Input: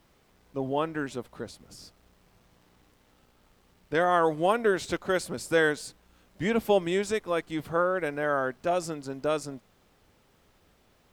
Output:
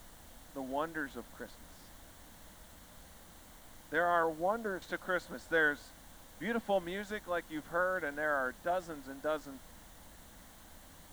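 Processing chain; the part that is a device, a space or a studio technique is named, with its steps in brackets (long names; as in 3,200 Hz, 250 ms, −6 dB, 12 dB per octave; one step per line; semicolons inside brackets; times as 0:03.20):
0:04.23–0:04.82: low-pass filter 1,000 Hz 12 dB per octave
horn gramophone (band-pass filter 210–4,000 Hz; parametric band 1,500 Hz +6.5 dB 0.39 octaves; tape wow and flutter; pink noise bed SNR 18 dB)
thirty-one-band graphic EQ 125 Hz −11 dB, 400 Hz −12 dB, 1,250 Hz −4 dB, 2,500 Hz −11 dB, 5,000 Hz −7 dB
level −5.5 dB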